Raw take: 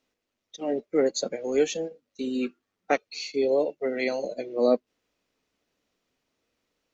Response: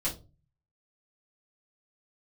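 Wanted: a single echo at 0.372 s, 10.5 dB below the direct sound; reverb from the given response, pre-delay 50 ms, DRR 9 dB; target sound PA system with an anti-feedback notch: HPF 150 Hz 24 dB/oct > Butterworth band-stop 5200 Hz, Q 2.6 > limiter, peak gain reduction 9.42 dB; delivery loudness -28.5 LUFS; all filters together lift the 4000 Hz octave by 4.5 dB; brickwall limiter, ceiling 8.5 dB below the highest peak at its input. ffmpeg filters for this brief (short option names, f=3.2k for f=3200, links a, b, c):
-filter_complex "[0:a]equalizer=f=4k:t=o:g=8.5,alimiter=limit=-17dB:level=0:latency=1,aecho=1:1:372:0.299,asplit=2[a][b];[1:a]atrim=start_sample=2205,adelay=50[c];[b][c]afir=irnorm=-1:irlink=0,volume=-14dB[d];[a][d]amix=inputs=2:normalize=0,highpass=f=150:w=0.5412,highpass=f=150:w=1.3066,asuperstop=centerf=5200:order=8:qfactor=2.6,volume=4.5dB,alimiter=limit=-19dB:level=0:latency=1"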